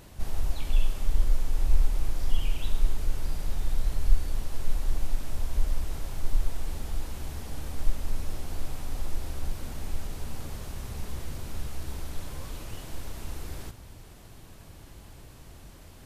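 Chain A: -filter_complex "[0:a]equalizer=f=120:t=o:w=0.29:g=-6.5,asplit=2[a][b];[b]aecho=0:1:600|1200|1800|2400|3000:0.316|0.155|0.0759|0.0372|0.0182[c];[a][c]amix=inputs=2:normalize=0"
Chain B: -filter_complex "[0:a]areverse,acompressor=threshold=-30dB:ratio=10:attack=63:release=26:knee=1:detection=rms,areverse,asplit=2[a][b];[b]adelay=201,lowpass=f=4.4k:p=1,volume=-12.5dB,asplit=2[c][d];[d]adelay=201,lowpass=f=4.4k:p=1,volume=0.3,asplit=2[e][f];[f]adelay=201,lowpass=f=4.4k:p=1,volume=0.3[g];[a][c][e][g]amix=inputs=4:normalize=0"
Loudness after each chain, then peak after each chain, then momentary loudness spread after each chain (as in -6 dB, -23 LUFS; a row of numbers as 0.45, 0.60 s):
-35.0, -40.0 LUFS; -6.5, -19.5 dBFS; 18, 11 LU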